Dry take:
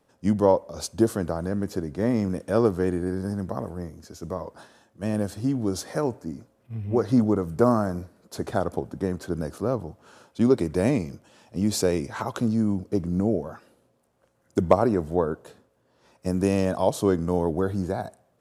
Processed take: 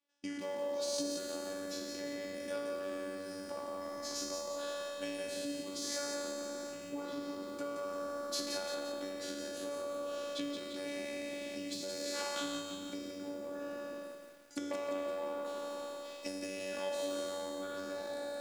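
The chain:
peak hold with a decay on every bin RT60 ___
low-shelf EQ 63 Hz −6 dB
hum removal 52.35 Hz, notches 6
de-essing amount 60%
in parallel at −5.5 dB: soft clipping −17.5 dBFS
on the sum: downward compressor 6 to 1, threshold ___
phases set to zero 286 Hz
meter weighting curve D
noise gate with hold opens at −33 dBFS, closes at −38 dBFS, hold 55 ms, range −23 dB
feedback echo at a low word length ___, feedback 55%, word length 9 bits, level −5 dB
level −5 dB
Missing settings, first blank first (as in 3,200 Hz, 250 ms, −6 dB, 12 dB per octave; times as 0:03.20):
1.85 s, −31 dBFS, 173 ms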